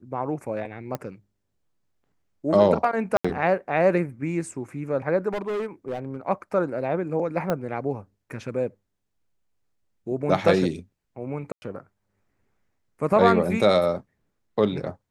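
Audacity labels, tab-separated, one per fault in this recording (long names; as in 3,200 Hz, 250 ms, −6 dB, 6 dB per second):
0.950000	0.950000	click −16 dBFS
3.170000	3.250000	drop-out 75 ms
5.330000	6.170000	clipping −25 dBFS
7.500000	7.500000	click −12 dBFS
11.520000	11.620000	drop-out 100 ms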